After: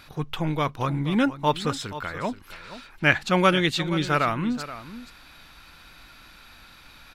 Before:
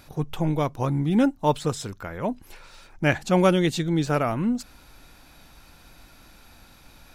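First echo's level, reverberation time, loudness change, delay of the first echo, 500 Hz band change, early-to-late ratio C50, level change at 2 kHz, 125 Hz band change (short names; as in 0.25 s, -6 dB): -14.0 dB, none, 0.0 dB, 0.476 s, -2.5 dB, none, +6.0 dB, -2.5 dB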